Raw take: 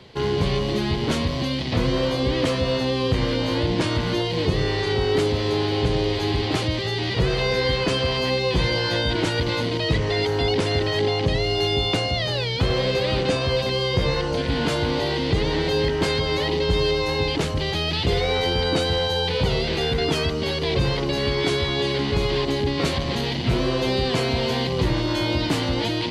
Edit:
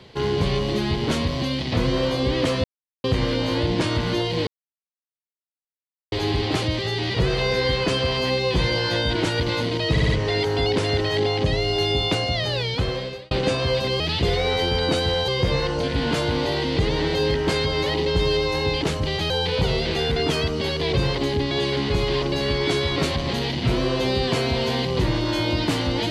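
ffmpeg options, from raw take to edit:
ffmpeg -i in.wav -filter_complex "[0:a]asplit=16[link_01][link_02][link_03][link_04][link_05][link_06][link_07][link_08][link_09][link_10][link_11][link_12][link_13][link_14][link_15][link_16];[link_01]atrim=end=2.64,asetpts=PTS-STARTPTS,afade=type=out:start_time=2.636:duration=0.004:curve=hsin[link_17];[link_02]atrim=start=2.64:end=3.04,asetpts=PTS-STARTPTS,volume=0[link_18];[link_03]atrim=start=3.04:end=4.47,asetpts=PTS-STARTPTS,afade=type=in:duration=0.004:curve=hsin,afade=type=out:start_time=1.426:duration=0.004:curve=hsin[link_19];[link_04]atrim=start=4.47:end=6.12,asetpts=PTS-STARTPTS,volume=0[link_20];[link_05]atrim=start=6.12:end=9.972,asetpts=PTS-STARTPTS,afade=type=in:duration=0.004:curve=hsin[link_21];[link_06]atrim=start=9.908:end=9.972[link_22];[link_07]atrim=start=9.908:end=9.972[link_23];[link_08]atrim=start=9.908:end=13.13,asetpts=PTS-STARTPTS,afade=type=out:start_time=2.582:duration=0.64[link_24];[link_09]atrim=start=13.13:end=13.822,asetpts=PTS-STARTPTS,afade=type=in:duration=0.004:curve=hsin[link_25];[link_10]atrim=start=17.838:end=19.122[link_26];[link_11]atrim=start=13.818:end=17.842[link_27];[link_12]atrim=start=19.118:end=20.992[link_28];[link_13]atrim=start=22.438:end=22.782[link_29];[link_14]atrim=start=21.728:end=22.442[link_30];[link_15]atrim=start=20.988:end=21.732[link_31];[link_16]atrim=start=22.778[link_32];[link_17][link_18][link_19][link_20][link_21]concat=n=5:v=0:a=1[link_33];[link_33][link_22]acrossfade=duration=0.004:curve1=hsin:curve2=hsin[link_34];[link_34][link_23]acrossfade=duration=0.004:curve1=hsin:curve2=hsin[link_35];[link_24][link_25]concat=n=2:v=0:a=1[link_36];[link_35][link_36]acrossfade=duration=0.004:curve1=hsin:curve2=hsin[link_37];[link_37][link_26]acrossfade=duration=0.004:curve1=hsin:curve2=hsin[link_38];[link_38][link_27]acrossfade=duration=0.004:curve1=hsin:curve2=hsin[link_39];[link_39][link_28]acrossfade=duration=0.004:curve1=hsin:curve2=hsin[link_40];[link_40][link_29]acrossfade=duration=0.004:curve1=hsin:curve2=hsin[link_41];[link_41][link_30]acrossfade=duration=0.004:curve1=hsin:curve2=hsin[link_42];[link_42][link_31]acrossfade=duration=0.004:curve1=hsin:curve2=hsin[link_43];[link_43][link_32]acrossfade=duration=0.004:curve1=hsin:curve2=hsin" out.wav

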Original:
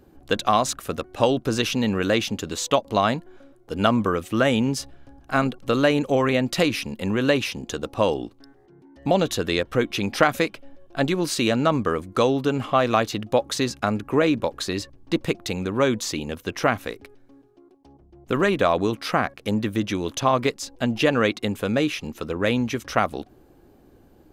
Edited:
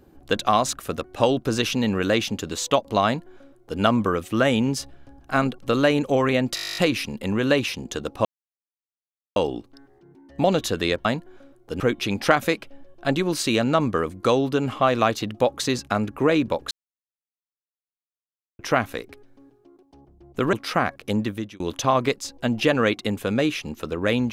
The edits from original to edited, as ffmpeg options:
ffmpeg -i in.wav -filter_complex "[0:a]asplit=19[link_01][link_02][link_03][link_04][link_05][link_06][link_07][link_08][link_09][link_10][link_11][link_12][link_13][link_14][link_15][link_16][link_17][link_18][link_19];[link_01]atrim=end=6.572[link_20];[link_02]atrim=start=6.548:end=6.572[link_21];[link_03]atrim=start=6.548:end=6.572[link_22];[link_04]atrim=start=6.548:end=6.572[link_23];[link_05]atrim=start=6.548:end=6.572[link_24];[link_06]atrim=start=6.548:end=6.572[link_25];[link_07]atrim=start=6.548:end=6.572[link_26];[link_08]atrim=start=6.548:end=6.572[link_27];[link_09]atrim=start=6.548:end=6.572[link_28];[link_10]atrim=start=6.548:end=6.572[link_29];[link_11]atrim=start=6.548:end=6.572[link_30];[link_12]atrim=start=6.548:end=8.03,asetpts=PTS-STARTPTS,afade=type=out:start_time=1.478:duration=0.004:curve=hsin,apad=pad_dur=1.11[link_31];[link_13]atrim=start=8.03:end=9.722,asetpts=PTS-STARTPTS,afade=type=in:duration=0.004:curve=hsin[link_32];[link_14]atrim=start=3.048:end=3.802[link_33];[link_15]atrim=start=9.718:end=14.63,asetpts=PTS-STARTPTS,afade=type=out:start_time=4.908:duration=0.004:curve=hsin[link_34];[link_16]atrim=start=14.63:end=16.51,asetpts=PTS-STARTPTS,volume=0[link_35];[link_17]atrim=start=16.51:end=18.452,asetpts=PTS-STARTPTS,afade=type=in:duration=0.004:curve=hsin[link_36];[link_18]atrim=start=18.908:end=19.98,asetpts=PTS-STARTPTS,afade=type=out:start_time=0.682:duration=0.39[link_37];[link_19]atrim=start=19.98,asetpts=PTS-STARTPTS,afade=type=in:duration=0.004:curve=hsin[link_38];[link_20][link_21]acrossfade=duration=0.004:curve1=hsin:curve2=hsin[link_39];[link_39][link_22]acrossfade=duration=0.004:curve1=hsin:curve2=hsin[link_40];[link_40][link_23]acrossfade=duration=0.004:curve1=hsin:curve2=hsin[link_41];[link_41][link_24]acrossfade=duration=0.004:curve1=hsin:curve2=hsin[link_42];[link_42][link_25]acrossfade=duration=0.004:curve1=hsin:curve2=hsin[link_43];[link_43][link_26]acrossfade=duration=0.004:curve1=hsin:curve2=hsin[link_44];[link_44][link_27]acrossfade=duration=0.004:curve1=hsin:curve2=hsin[link_45];[link_45][link_28]acrossfade=duration=0.004:curve1=hsin:curve2=hsin[link_46];[link_46][link_29]acrossfade=duration=0.004:curve1=hsin:curve2=hsin[link_47];[link_47][link_30]acrossfade=duration=0.004:curve1=hsin:curve2=hsin[link_48];[link_31][link_32]concat=n=2:v=0:a=1[link_49];[link_48][link_49]acrossfade=duration=0.004:curve1=hsin:curve2=hsin[link_50];[link_50][link_33]acrossfade=duration=0.004:curve1=hsin:curve2=hsin[link_51];[link_34][link_35][link_36]concat=n=3:v=0:a=1[link_52];[link_51][link_52]acrossfade=duration=0.004:curve1=hsin:curve2=hsin[link_53];[link_37][link_38]concat=n=2:v=0:a=1[link_54];[link_53][link_54]acrossfade=duration=0.004:curve1=hsin:curve2=hsin" out.wav

